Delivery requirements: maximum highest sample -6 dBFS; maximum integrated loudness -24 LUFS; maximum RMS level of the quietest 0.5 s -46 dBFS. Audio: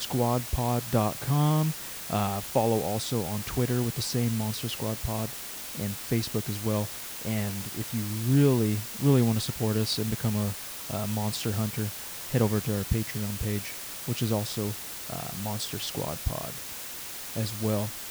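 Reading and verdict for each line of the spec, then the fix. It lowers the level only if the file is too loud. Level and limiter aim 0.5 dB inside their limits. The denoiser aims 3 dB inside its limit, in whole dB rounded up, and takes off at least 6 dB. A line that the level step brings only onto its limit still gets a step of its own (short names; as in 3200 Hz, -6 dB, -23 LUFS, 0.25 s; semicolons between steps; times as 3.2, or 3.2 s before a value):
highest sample -10.5 dBFS: OK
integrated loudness -29.0 LUFS: OK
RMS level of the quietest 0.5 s -39 dBFS: fail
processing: denoiser 10 dB, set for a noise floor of -39 dBFS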